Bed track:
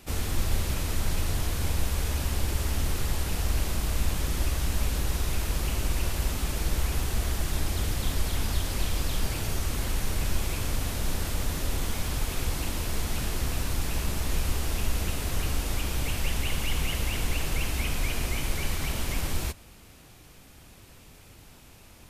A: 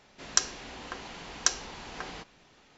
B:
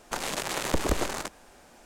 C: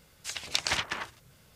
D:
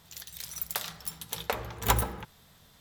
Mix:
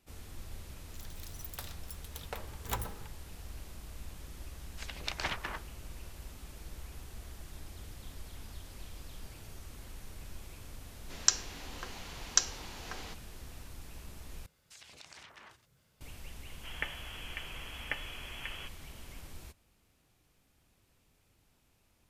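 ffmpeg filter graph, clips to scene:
-filter_complex "[3:a]asplit=2[s0][s1];[1:a]asplit=2[s2][s3];[0:a]volume=0.112[s4];[s0]lowpass=f=2000:p=1[s5];[s2]highshelf=f=3700:g=7.5[s6];[s1]acompressor=threshold=0.00794:ratio=6:attack=6.5:release=34:knee=1:detection=peak[s7];[s3]lowpass=f=2900:t=q:w=0.5098,lowpass=f=2900:t=q:w=0.6013,lowpass=f=2900:t=q:w=0.9,lowpass=f=2900:t=q:w=2.563,afreqshift=-3400[s8];[s4]asplit=2[s9][s10];[s9]atrim=end=14.464[s11];[s7]atrim=end=1.55,asetpts=PTS-STARTPTS,volume=0.266[s12];[s10]atrim=start=16.006[s13];[4:a]atrim=end=2.8,asetpts=PTS-STARTPTS,volume=0.266,afade=t=in:d=0.004:c=hsin,afade=t=out:st=2.796:d=0.004:c=hsin,adelay=830[s14];[s5]atrim=end=1.55,asetpts=PTS-STARTPTS,volume=0.708,afade=t=in:d=0.004:c=hsin,afade=t=out:st=1.546:d=0.004:c=hsin,adelay=199773S[s15];[s6]atrim=end=2.77,asetpts=PTS-STARTPTS,volume=0.501,afade=t=in:d=0.004:c=hsin,afade=t=out:st=2.766:d=0.004:c=hsin,adelay=10910[s16];[s8]atrim=end=2.77,asetpts=PTS-STARTPTS,volume=0.708,afade=t=in:d=0.004:c=hsin,afade=t=out:st=2.766:d=0.004:c=hsin,adelay=16450[s17];[s11][s12]acrossfade=d=0.004:c1=hsin:c2=hsin[s18];[s18][s13]acrossfade=d=0.004:c1=hsin:c2=hsin[s19];[s19][s14][s15][s16][s17]amix=inputs=5:normalize=0"

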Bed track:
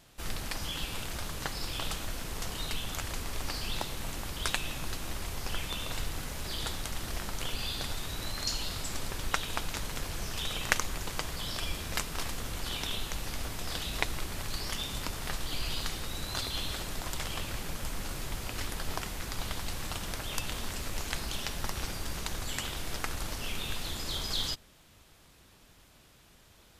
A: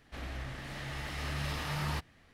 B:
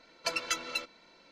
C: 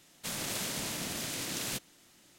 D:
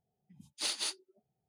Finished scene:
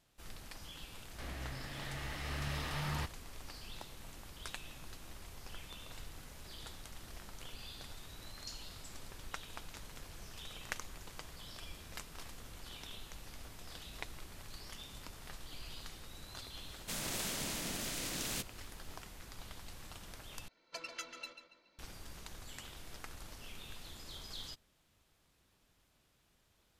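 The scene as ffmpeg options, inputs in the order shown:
-filter_complex "[0:a]volume=0.2[s0];[2:a]asplit=2[s1][s2];[s2]adelay=141,lowpass=f=4700:p=1,volume=0.398,asplit=2[s3][s4];[s4]adelay=141,lowpass=f=4700:p=1,volume=0.42,asplit=2[s5][s6];[s6]adelay=141,lowpass=f=4700:p=1,volume=0.42,asplit=2[s7][s8];[s8]adelay=141,lowpass=f=4700:p=1,volume=0.42,asplit=2[s9][s10];[s10]adelay=141,lowpass=f=4700:p=1,volume=0.42[s11];[s1][s3][s5][s7][s9][s11]amix=inputs=6:normalize=0[s12];[s0]asplit=2[s13][s14];[s13]atrim=end=20.484[s15];[s12]atrim=end=1.31,asetpts=PTS-STARTPTS,volume=0.224[s16];[s14]atrim=start=21.786[s17];[1:a]atrim=end=2.33,asetpts=PTS-STARTPTS,volume=0.668,afade=t=in:d=0.004:c=hsin,afade=t=out:st=2.326:d=0.004:c=hsin,adelay=1060[s18];[3:a]atrim=end=2.38,asetpts=PTS-STARTPTS,volume=0.668,afade=t=in:d=0.004:c=hsin,afade=t=out:st=2.376:d=0.004:c=hsin,adelay=16640[s19];[s15][s16]acrossfade=d=0.004:c1=hsin:c2=hsin[s20];[s20][s17]acrossfade=d=0.004:c1=hsin:c2=hsin[s21];[s21][s18][s19]amix=inputs=3:normalize=0"

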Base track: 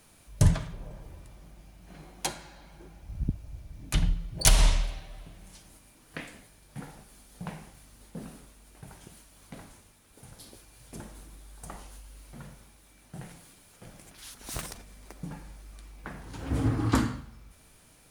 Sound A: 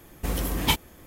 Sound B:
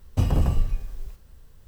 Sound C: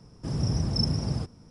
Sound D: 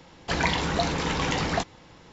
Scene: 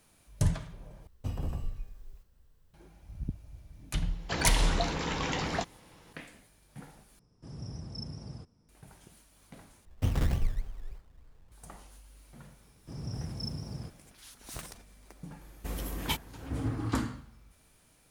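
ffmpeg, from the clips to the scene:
-filter_complex "[2:a]asplit=2[s0][s1];[3:a]asplit=2[s2][s3];[0:a]volume=0.501[s4];[s1]acrusher=samples=20:mix=1:aa=0.000001:lfo=1:lforange=12:lforate=3.3[s5];[s4]asplit=4[s6][s7][s8][s9];[s6]atrim=end=1.074[s10];[s0]atrim=end=1.67,asetpts=PTS-STARTPTS,volume=0.211[s11];[s7]atrim=start=2.736:end=7.194[s12];[s2]atrim=end=1.5,asetpts=PTS-STARTPTS,volume=0.178[s13];[s8]atrim=start=8.686:end=9.854[s14];[s5]atrim=end=1.67,asetpts=PTS-STARTPTS,volume=0.447[s15];[s9]atrim=start=11.516[s16];[4:a]atrim=end=2.12,asetpts=PTS-STARTPTS,volume=0.501,afade=t=in:d=0.004:c=hsin,afade=t=out:st=2.116:d=0.004:c=hsin,adelay=176841S[s17];[s3]atrim=end=1.5,asetpts=PTS-STARTPTS,volume=0.266,afade=t=in:d=0.004:c=hsin,afade=t=out:st=1.496:d=0.004:c=hsin,adelay=12640[s18];[1:a]atrim=end=1.06,asetpts=PTS-STARTPTS,volume=0.335,afade=t=in:d=0.004:c=hsin,afade=t=out:st=1.056:d=0.004:c=hsin,adelay=15410[s19];[s10][s11]acrossfade=d=0.004:c1=hsin:c2=hsin[s20];[s20][s12]acrossfade=d=0.004:c1=hsin:c2=hsin[s21];[s21][s13]acrossfade=d=0.004:c1=hsin:c2=hsin[s22];[s22][s14]acrossfade=d=0.004:c1=hsin:c2=hsin[s23];[s23][s15]acrossfade=d=0.004:c1=hsin:c2=hsin[s24];[s24][s16]acrossfade=d=0.004:c1=hsin:c2=hsin[s25];[s25][s17][s18][s19]amix=inputs=4:normalize=0"

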